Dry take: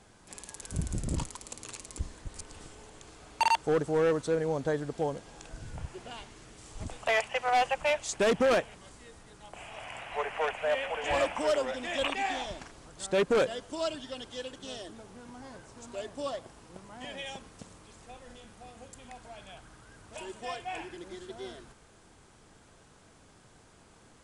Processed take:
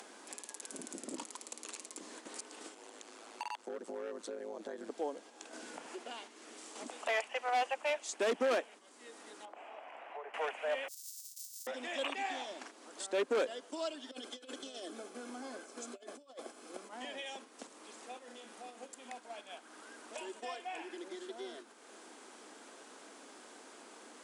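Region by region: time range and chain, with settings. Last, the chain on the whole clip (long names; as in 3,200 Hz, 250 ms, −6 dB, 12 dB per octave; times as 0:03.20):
0:02.74–0:04.90: downward compressor 5 to 1, threshold −32 dBFS + ring modulation 54 Hz
0:09.45–0:10.34: downward compressor 3 to 1, threshold −43 dBFS + resonant band-pass 620 Hz, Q 0.66
0:10.88–0:11.67: samples sorted by size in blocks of 128 samples + compressor whose output falls as the input rises −30 dBFS + inverse Chebyshev high-pass filter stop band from 1,800 Hz, stop band 60 dB
0:14.11–0:16.89: compressor whose output falls as the input rises −44 dBFS, ratio −0.5 + high-shelf EQ 8,500 Hz +4.5 dB + notch comb filter 940 Hz
whole clip: noise gate −47 dBFS, range −7 dB; Butterworth high-pass 240 Hz 48 dB per octave; upward compression, threshold −31 dBFS; level −6.5 dB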